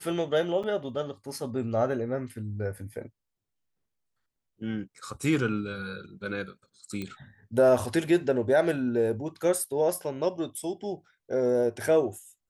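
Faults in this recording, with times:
0:00.63–0:00.64: drop-out 6.3 ms
0:07.02: click −22 dBFS

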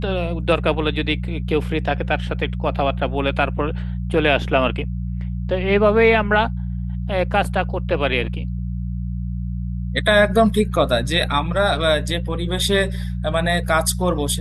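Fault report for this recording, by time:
mains hum 60 Hz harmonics 3 −25 dBFS

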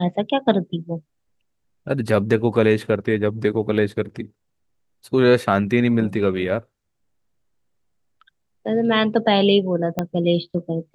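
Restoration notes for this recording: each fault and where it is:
0:09.99: click −9 dBFS

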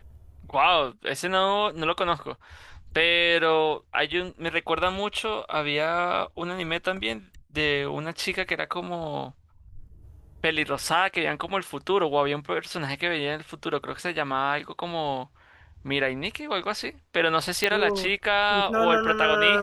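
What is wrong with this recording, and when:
0:17.64: click −7 dBFS

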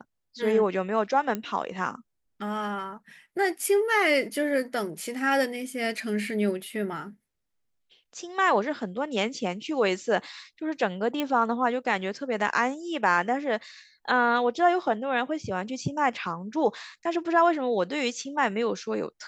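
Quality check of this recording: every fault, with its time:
0:01.35: click −16 dBFS
0:11.20: click −14 dBFS

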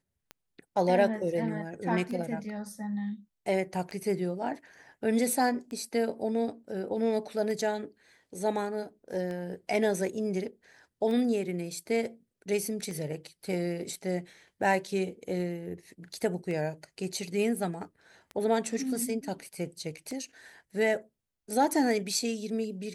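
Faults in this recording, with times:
scratch tick 33 1/3 rpm −26 dBFS

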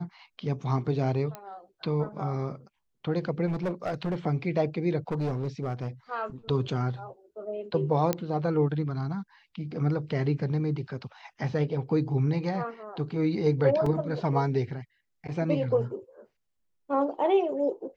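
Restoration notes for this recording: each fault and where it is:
0:01.35: click −22 dBFS
0:03.46–0:04.15: clipping −25 dBFS
0:05.08–0:05.88: clipping −25 dBFS
0:08.13: click −11 dBFS
0:13.86: drop-out 3.9 ms

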